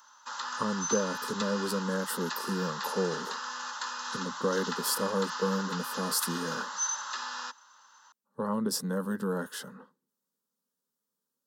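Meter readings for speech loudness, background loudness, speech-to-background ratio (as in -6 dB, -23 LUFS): -32.5 LUFS, -35.5 LUFS, 3.0 dB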